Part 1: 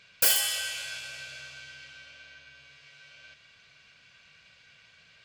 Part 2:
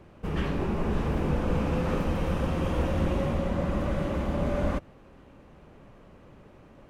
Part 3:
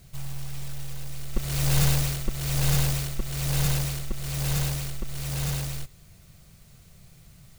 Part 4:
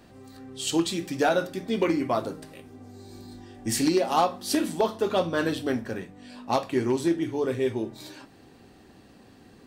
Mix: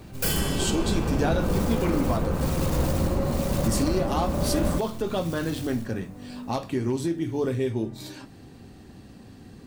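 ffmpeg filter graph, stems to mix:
ffmpeg -i stem1.wav -i stem2.wav -i stem3.wav -i stem4.wav -filter_complex "[0:a]tiltshelf=frequency=970:gain=4.5,volume=-1.5dB[link_01];[1:a]lowpass=1600,volume=1.5dB[link_02];[2:a]alimiter=limit=-18.5dB:level=0:latency=1:release=60,volume=-5dB[link_03];[3:a]bass=frequency=250:gain=10,treble=frequency=4000:gain=3,volume=1dB[link_04];[link_03][link_04]amix=inputs=2:normalize=0,alimiter=limit=-17.5dB:level=0:latency=1:release=300,volume=0dB[link_05];[link_01][link_02][link_05]amix=inputs=3:normalize=0" out.wav

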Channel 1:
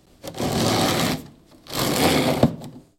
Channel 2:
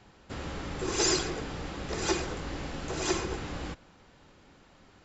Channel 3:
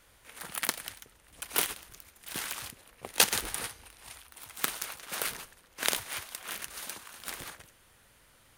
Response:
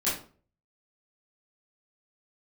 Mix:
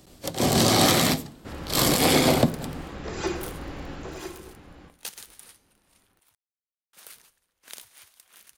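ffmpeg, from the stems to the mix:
-filter_complex "[0:a]highshelf=frequency=5200:gain=6.5,volume=1.5dB[link_01];[1:a]highshelf=frequency=4500:gain=-9.5,adelay=1150,volume=-1dB,afade=type=out:start_time=3.93:duration=0.38:silence=0.266073,asplit=2[link_02][link_03];[link_03]volume=-16.5dB[link_04];[2:a]adynamicequalizer=threshold=0.00501:dfrequency=3000:dqfactor=0.7:tfrequency=3000:tqfactor=0.7:attack=5:release=100:ratio=0.375:range=3.5:mode=boostabove:tftype=highshelf,adelay=1850,volume=-18.5dB,asplit=3[link_05][link_06][link_07];[link_05]atrim=end=6.35,asetpts=PTS-STARTPTS,afade=type=out:start_time=6.346:duration=0.004:curve=hsin[link_08];[link_06]atrim=start=6.35:end=6.93,asetpts=PTS-STARTPTS,volume=0[link_09];[link_07]atrim=start=6.93,asetpts=PTS-STARTPTS,afade=type=in:duration=0.004:curve=hsin[link_10];[link_08][link_09][link_10]concat=n=3:v=0:a=1[link_11];[3:a]atrim=start_sample=2205[link_12];[link_04][link_12]afir=irnorm=-1:irlink=0[link_13];[link_01][link_02][link_11][link_13]amix=inputs=4:normalize=0,alimiter=limit=-7dB:level=0:latency=1:release=232"

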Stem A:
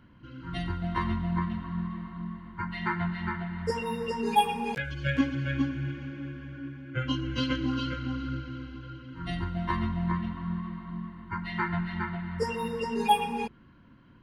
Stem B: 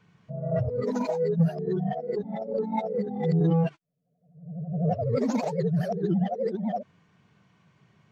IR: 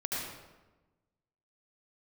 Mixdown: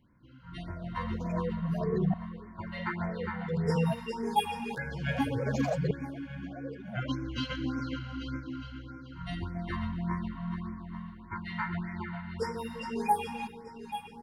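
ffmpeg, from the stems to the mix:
-filter_complex "[0:a]volume=-10dB,asplit=3[link_01][link_02][link_03];[link_02]volume=-18.5dB[link_04];[link_03]volume=-10.5dB[link_05];[1:a]aecho=1:1:1.7:0.89,alimiter=limit=-20.5dB:level=0:latency=1:release=147,aeval=exprs='val(0)*pow(10,-30*if(lt(mod(-0.53*n/s,1),2*abs(-0.53)/1000),1-mod(-0.53*n/s,1)/(2*abs(-0.53)/1000),(mod(-0.53*n/s,1)-2*abs(-0.53)/1000)/(1-2*abs(-0.53)/1000))/20)':channel_layout=same,adelay=250,volume=-3dB[link_06];[2:a]atrim=start_sample=2205[link_07];[link_04][link_07]afir=irnorm=-1:irlink=0[link_08];[link_05]aecho=0:1:836|1672|2508:1|0.18|0.0324[link_09];[link_01][link_06][link_08][link_09]amix=inputs=4:normalize=0,dynaudnorm=framelen=140:gausssize=13:maxgain=5.5dB,afftfilt=real='re*(1-between(b*sr/1024,310*pow(3600/310,0.5+0.5*sin(2*PI*1.7*pts/sr))/1.41,310*pow(3600/310,0.5+0.5*sin(2*PI*1.7*pts/sr))*1.41))':imag='im*(1-between(b*sr/1024,310*pow(3600/310,0.5+0.5*sin(2*PI*1.7*pts/sr))/1.41,310*pow(3600/310,0.5+0.5*sin(2*PI*1.7*pts/sr))*1.41))':win_size=1024:overlap=0.75"

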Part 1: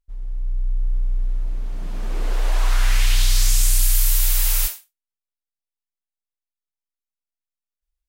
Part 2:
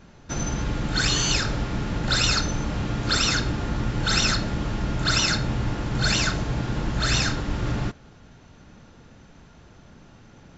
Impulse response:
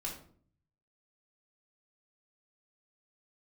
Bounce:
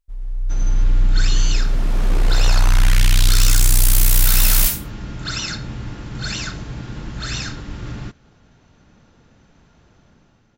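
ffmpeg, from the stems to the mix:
-filter_complex "[0:a]asoftclip=type=tanh:threshold=-18.5dB,volume=2dB[link_01];[1:a]adynamicequalizer=threshold=0.00708:dfrequency=670:dqfactor=0.94:tfrequency=670:tqfactor=0.94:attack=5:release=100:ratio=0.375:range=2.5:mode=cutabove:tftype=bell,adelay=200,volume=-11.5dB[link_02];[link_01][link_02]amix=inputs=2:normalize=0,dynaudnorm=framelen=110:gausssize=11:maxgain=8dB"

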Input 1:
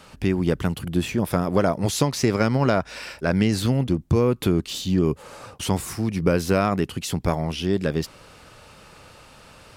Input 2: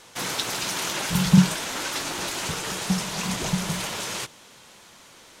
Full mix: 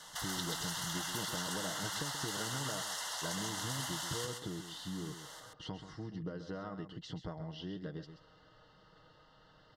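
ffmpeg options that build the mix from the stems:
ffmpeg -i stem1.wav -i stem2.wav -filter_complex "[0:a]lowpass=frequency=4700:width=0.5412,lowpass=frequency=4700:width=1.3066,aecho=1:1:6.4:0.56,acompressor=threshold=-23dB:ratio=6,volume=-16dB,asplit=2[link_01][link_02];[link_02]volume=-10dB[link_03];[1:a]highpass=frequency=710:width=0.5412,highpass=frequency=710:width=1.3066,acompressor=threshold=-38dB:ratio=4,volume=-2dB,asplit=2[link_04][link_05];[link_05]volume=-3.5dB[link_06];[link_03][link_06]amix=inputs=2:normalize=0,aecho=0:1:132:1[link_07];[link_01][link_04][link_07]amix=inputs=3:normalize=0,asuperstop=centerf=2400:order=12:qfactor=3.8" out.wav

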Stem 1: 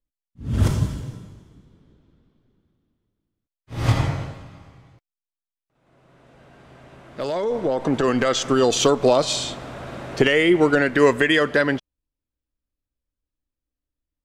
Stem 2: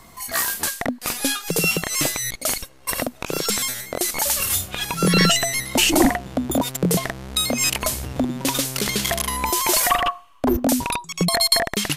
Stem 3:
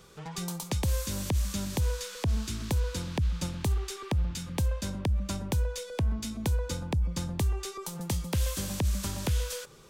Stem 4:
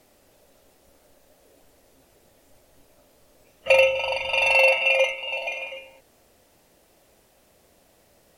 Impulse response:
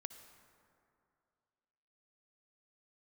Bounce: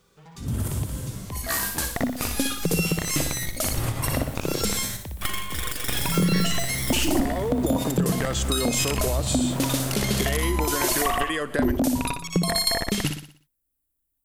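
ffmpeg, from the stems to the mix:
-filter_complex "[0:a]volume=0.5dB[link_01];[1:a]lowshelf=frequency=270:gain=11,adelay=1150,volume=-4.5dB,asplit=3[link_02][link_03][link_04];[link_02]atrim=end=4.97,asetpts=PTS-STARTPTS,afade=type=out:start_time=4.966:duration=0.004:curve=hsin[link_05];[link_03]atrim=start=4.97:end=5.88,asetpts=PTS-STARTPTS,volume=0[link_06];[link_04]atrim=start=5.88,asetpts=PTS-STARTPTS,afade=type=in:duration=0.004:curve=hsin[link_07];[link_05][link_06][link_07]concat=n=3:v=0:a=1,asplit=2[link_08][link_09];[link_09]volume=-7.5dB[link_10];[2:a]volume=-8.5dB,asplit=2[link_11][link_12];[link_12]volume=-7dB[link_13];[3:a]aeval=exprs='abs(val(0))':channel_layout=same,adelay=1550,volume=1dB[link_14];[link_01][link_14]amix=inputs=2:normalize=0,aexciter=amount=6.8:drive=5.2:freq=7900,acompressor=threshold=-23dB:ratio=12,volume=0dB[link_15];[link_10][link_13]amix=inputs=2:normalize=0,aecho=0:1:60|120|180|240|300|360:1|0.45|0.202|0.0911|0.041|0.0185[link_16];[link_08][link_11][link_15][link_16]amix=inputs=4:normalize=0,acompressor=threshold=-19dB:ratio=4"

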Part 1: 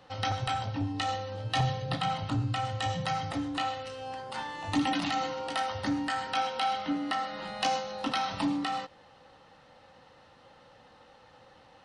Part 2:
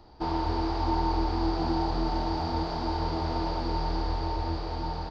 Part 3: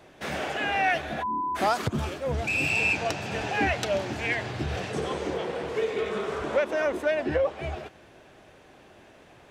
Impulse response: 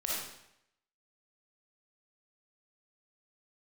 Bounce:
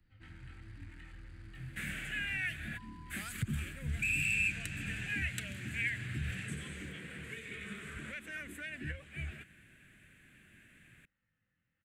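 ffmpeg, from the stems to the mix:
-filter_complex "[0:a]lowpass=frequency=1600:poles=1,flanger=delay=18.5:depth=5.4:speed=1.5,volume=-16dB[link_01];[1:a]asoftclip=type=tanh:threshold=-31.5dB,volume=-14dB[link_02];[2:a]equalizer=frequency=77:width_type=o:width=0.77:gain=-3,adelay=1550,volume=-3dB[link_03];[link_01][link_02][link_03]amix=inputs=3:normalize=0,acrossover=split=150|3000[link_04][link_05][link_06];[link_05]acompressor=threshold=-36dB:ratio=3[link_07];[link_04][link_07][link_06]amix=inputs=3:normalize=0,firequalizer=gain_entry='entry(190,0);entry(410,-18);entry(840,-27);entry(1600,1);entry(2300,2);entry(3300,-6);entry(5400,-17);entry(7800,3)':delay=0.05:min_phase=1"

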